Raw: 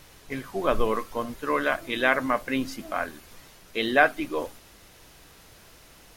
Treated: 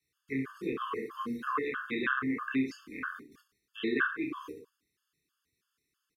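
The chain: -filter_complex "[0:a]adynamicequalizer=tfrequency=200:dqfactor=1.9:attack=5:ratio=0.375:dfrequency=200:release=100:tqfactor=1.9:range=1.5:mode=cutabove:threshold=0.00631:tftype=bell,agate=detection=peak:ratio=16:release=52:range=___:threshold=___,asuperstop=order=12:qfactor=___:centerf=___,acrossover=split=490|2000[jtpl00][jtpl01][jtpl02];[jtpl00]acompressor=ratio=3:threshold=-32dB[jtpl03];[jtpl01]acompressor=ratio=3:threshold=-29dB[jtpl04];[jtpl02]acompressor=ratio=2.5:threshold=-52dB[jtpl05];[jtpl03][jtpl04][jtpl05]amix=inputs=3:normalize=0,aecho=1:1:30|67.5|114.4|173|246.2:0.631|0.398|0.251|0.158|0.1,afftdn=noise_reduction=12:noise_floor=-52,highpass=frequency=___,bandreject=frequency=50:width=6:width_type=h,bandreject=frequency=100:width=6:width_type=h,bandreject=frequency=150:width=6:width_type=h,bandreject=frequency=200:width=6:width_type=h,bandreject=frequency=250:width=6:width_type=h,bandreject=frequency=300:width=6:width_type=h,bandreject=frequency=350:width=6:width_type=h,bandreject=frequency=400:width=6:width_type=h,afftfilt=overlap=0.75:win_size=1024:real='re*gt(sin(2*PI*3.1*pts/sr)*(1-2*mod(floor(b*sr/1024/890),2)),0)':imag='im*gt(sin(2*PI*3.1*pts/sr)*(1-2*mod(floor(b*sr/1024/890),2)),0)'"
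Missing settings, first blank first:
-16dB, -49dB, 1.1, 700, 140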